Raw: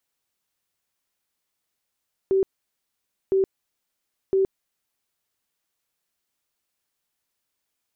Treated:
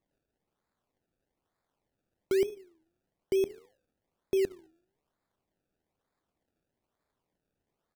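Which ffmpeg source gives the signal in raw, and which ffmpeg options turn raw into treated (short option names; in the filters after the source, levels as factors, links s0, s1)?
-f lavfi -i "aevalsrc='0.15*sin(2*PI*385*mod(t,1.01))*lt(mod(t,1.01),46/385)':d=3.03:s=44100"
-filter_complex "[0:a]flanger=delay=9.3:depth=3.4:regen=88:speed=1.6:shape=triangular,aecho=1:1:71|142|213:0.0841|0.0328|0.0128,acrossover=split=420[s0][s1];[s1]acrusher=samples=29:mix=1:aa=0.000001:lfo=1:lforange=29:lforate=1.1[s2];[s0][s2]amix=inputs=2:normalize=0"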